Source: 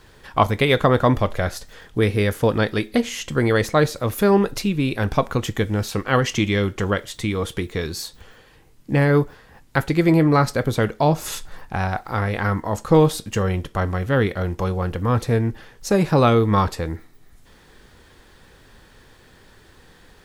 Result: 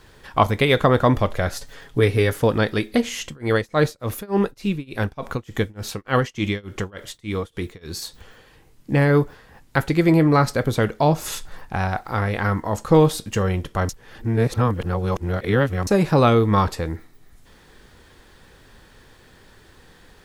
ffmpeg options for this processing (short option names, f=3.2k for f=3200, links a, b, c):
-filter_complex "[0:a]asettb=1/sr,asplit=3[a][b][c];[a]atrim=end=1.514[d];[b]atrim=start=1.51:end=2.4,asetpts=PTS-STARTPTS,afade=t=in:d=0.004:c=qsin,afade=t=out:st=0.886:d=0.004:c=qsin,aecho=1:1:7.2:0.54,atrim=end_sample=39249[e];[c]atrim=start=2.396[f];[d][e]acrossfade=d=0.004:c1=hsin:c2=qsin[g];[g][f]acrossfade=d=0.004:c1=qsin:c2=hsin,asettb=1/sr,asplit=3[h][i][j];[h]atrim=end=3.244[k];[i]atrim=start=3.24:end=8.02,asetpts=PTS-STARTPTS,afade=t=in:d=0.004:c=qsin,afade=t=out:st=4.776:d=0.004:c=qsin,tremolo=f=3.4:d=0.97[l];[j]atrim=start=8.016[m];[k][l]acrossfade=d=0.004:c1=hsin:c2=qsin[n];[n][m]acrossfade=d=0.004:c1=qsin:c2=hsin,asplit=3[o][p][q];[o]atrim=end=13.892[r];[p]atrim=start=13.888:end=15.872,asetpts=PTS-STARTPTS,areverse[s];[q]atrim=start=15.868[t];[r][s]acrossfade=d=0.004:c1=hsin:c2=hsin[u];[u][t]acrossfade=d=0.004:c1=hsin:c2=hsin"